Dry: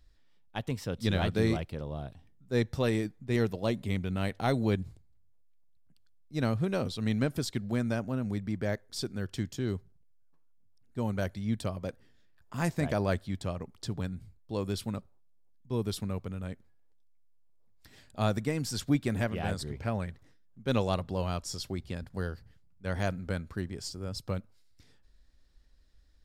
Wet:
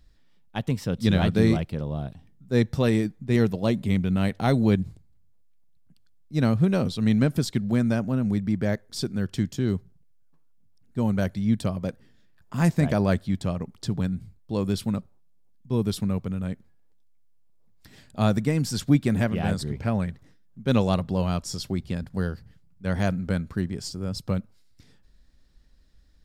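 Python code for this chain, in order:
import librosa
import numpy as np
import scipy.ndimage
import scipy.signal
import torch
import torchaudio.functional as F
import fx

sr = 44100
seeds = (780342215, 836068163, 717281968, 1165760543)

y = fx.peak_eq(x, sr, hz=180.0, db=7.0, octaves=1.1)
y = y * librosa.db_to_amplitude(4.0)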